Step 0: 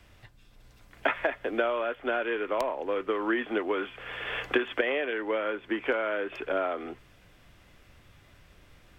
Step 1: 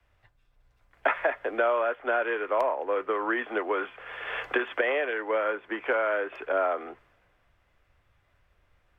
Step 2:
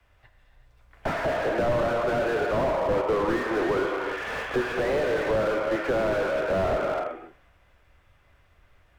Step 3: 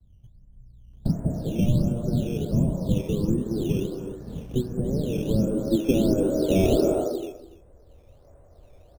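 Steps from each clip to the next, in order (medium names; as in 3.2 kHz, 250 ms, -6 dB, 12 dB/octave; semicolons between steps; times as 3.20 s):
three-band isolator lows -14 dB, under 440 Hz, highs -13 dB, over 2.1 kHz; in parallel at -1 dB: peak limiter -23.5 dBFS, peak gain reduction 8 dB; on the sum: three bands expanded up and down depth 40%
gated-style reverb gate 410 ms flat, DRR 3 dB; slew-rate limiter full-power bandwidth 27 Hz; trim +5 dB
low-pass sweep 180 Hz -> 570 Hz, 4.85–8.36 s; in parallel at +3 dB: decimation with a swept rate 10×, swing 100% 1.4 Hz; on the sum: delay 287 ms -17 dB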